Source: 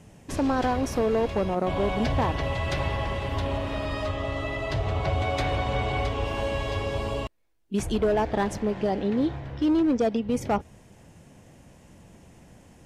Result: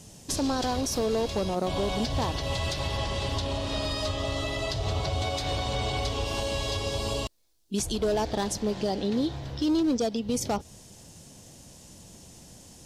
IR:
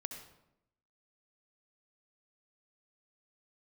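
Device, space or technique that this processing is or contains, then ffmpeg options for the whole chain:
over-bright horn tweeter: -filter_complex "[0:a]highshelf=frequency=3100:width_type=q:width=1.5:gain=11.5,alimiter=limit=-19.5dB:level=0:latency=1:release=168,asettb=1/sr,asplit=3[link_01][link_02][link_03];[link_01]atrim=end=2.974[link_04];[link_02]atrim=start=2.97:end=3.85,asetpts=PTS-STARTPTS,afade=type=in:duration=0.004:curve=qsin,afade=type=out:start_time=0.876:duration=0.004:curve=qsin,lowpass=9900[link_05];[link_03]atrim=start=3.846[link_06];[link_04][link_05]acrossfade=duration=0.004:curve1=hsin:curve2=qsin[link_07];[link_07][link_06]acrossfade=duration=0.004:curve1=qsin:curve2=hsin"

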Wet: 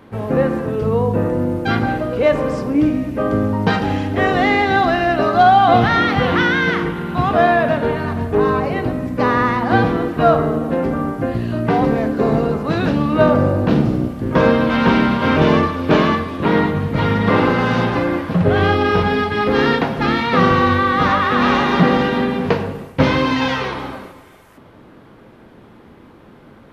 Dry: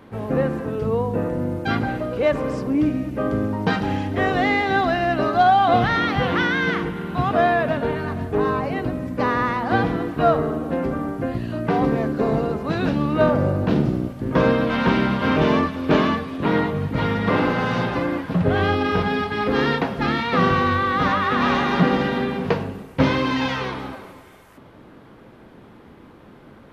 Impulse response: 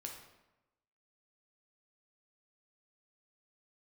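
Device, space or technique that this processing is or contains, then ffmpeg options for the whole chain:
keyed gated reverb: -filter_complex "[0:a]asplit=3[link_01][link_02][link_03];[1:a]atrim=start_sample=2205[link_04];[link_02][link_04]afir=irnorm=-1:irlink=0[link_05];[link_03]apad=whole_len=1178587[link_06];[link_05][link_06]sidechaingate=range=-8dB:threshold=-39dB:ratio=16:detection=peak,volume=1dB[link_07];[link_01][link_07]amix=inputs=2:normalize=0"

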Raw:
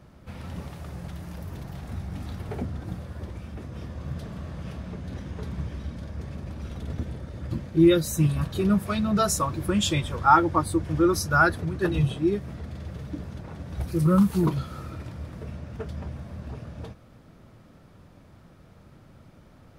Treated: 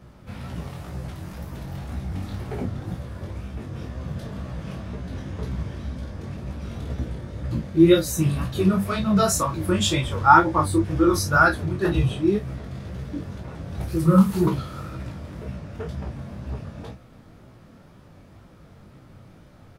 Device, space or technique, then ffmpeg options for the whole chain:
double-tracked vocal: -filter_complex "[0:a]asplit=2[link_01][link_02];[link_02]adelay=31,volume=-7.5dB[link_03];[link_01][link_03]amix=inputs=2:normalize=0,flanger=delay=15.5:depth=6.8:speed=2,volume=5.5dB"

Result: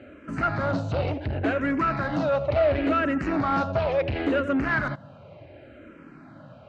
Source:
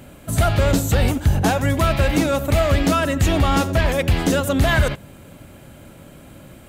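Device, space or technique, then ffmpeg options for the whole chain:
barber-pole phaser into a guitar amplifier: -filter_complex "[0:a]asplit=2[link_01][link_02];[link_02]afreqshift=-0.7[link_03];[link_01][link_03]amix=inputs=2:normalize=1,asoftclip=type=tanh:threshold=-18.5dB,highpass=95,equalizer=frequency=190:width_type=q:width=4:gain=-4,equalizer=frequency=300:width_type=q:width=4:gain=4,equalizer=frequency=620:width_type=q:width=4:gain=6,equalizer=frequency=1400:width_type=q:width=4:gain=5,equalizer=frequency=3400:width_type=q:width=4:gain=-9,lowpass=frequency=3900:width=0.5412,lowpass=frequency=3900:width=1.3066,volume=-1.5dB"

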